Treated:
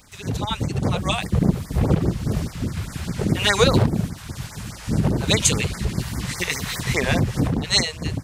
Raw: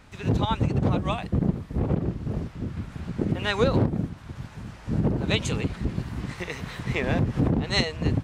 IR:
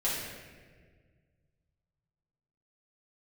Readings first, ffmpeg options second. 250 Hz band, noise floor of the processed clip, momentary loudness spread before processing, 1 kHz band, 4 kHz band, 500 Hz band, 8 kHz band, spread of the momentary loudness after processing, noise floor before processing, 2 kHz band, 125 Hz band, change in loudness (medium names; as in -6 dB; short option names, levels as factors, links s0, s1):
+3.0 dB, -38 dBFS, 11 LU, +3.5 dB, +9.0 dB, +3.5 dB, +18.0 dB, 12 LU, -45 dBFS, +6.5 dB, +3.5 dB, +5.0 dB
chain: -af "dynaudnorm=f=310:g=7:m=3.76,crystalizer=i=5:c=0,afftfilt=real='re*(1-between(b*sr/1024,240*pow(3400/240,0.5+0.5*sin(2*PI*4.9*pts/sr))/1.41,240*pow(3400/240,0.5+0.5*sin(2*PI*4.9*pts/sr))*1.41))':imag='im*(1-between(b*sr/1024,240*pow(3400/240,0.5+0.5*sin(2*PI*4.9*pts/sr))/1.41,240*pow(3400/240,0.5+0.5*sin(2*PI*4.9*pts/sr))*1.41))':win_size=1024:overlap=0.75,volume=0.75"